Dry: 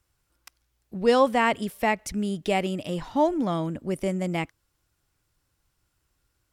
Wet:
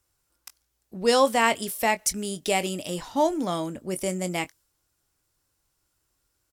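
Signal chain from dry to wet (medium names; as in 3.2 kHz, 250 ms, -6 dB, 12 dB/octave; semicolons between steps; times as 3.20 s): tone controls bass -6 dB, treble +13 dB; doubling 22 ms -12 dB; tape noise reduction on one side only decoder only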